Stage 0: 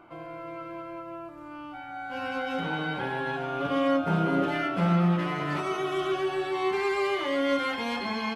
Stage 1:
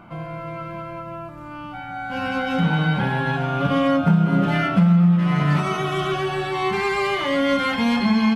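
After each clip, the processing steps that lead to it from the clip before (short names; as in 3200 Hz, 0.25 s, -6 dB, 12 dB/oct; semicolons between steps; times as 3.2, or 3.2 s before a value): resonant low shelf 260 Hz +7 dB, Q 3; compressor 6:1, threshold -21 dBFS, peak gain reduction 11 dB; gain +7.5 dB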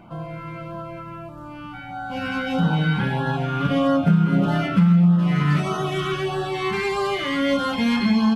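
LFO notch sine 1.6 Hz 600–2300 Hz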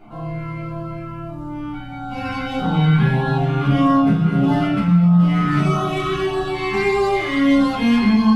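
shoebox room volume 170 m³, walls furnished, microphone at 4 m; gain -6 dB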